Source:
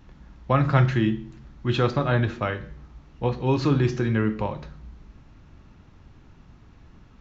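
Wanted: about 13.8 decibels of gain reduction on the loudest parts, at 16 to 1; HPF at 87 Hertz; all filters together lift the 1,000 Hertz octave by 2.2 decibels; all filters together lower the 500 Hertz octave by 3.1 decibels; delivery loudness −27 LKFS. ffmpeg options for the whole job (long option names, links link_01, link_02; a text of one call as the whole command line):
ffmpeg -i in.wav -af "highpass=87,equalizer=frequency=500:width_type=o:gain=-5,equalizer=frequency=1000:width_type=o:gain=4,acompressor=threshold=-28dB:ratio=16,volume=7.5dB" out.wav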